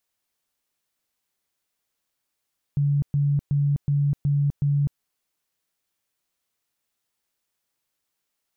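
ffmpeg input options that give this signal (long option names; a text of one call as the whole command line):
ffmpeg -f lavfi -i "aevalsrc='0.126*sin(2*PI*143*mod(t,0.37))*lt(mod(t,0.37),36/143)':duration=2.22:sample_rate=44100" out.wav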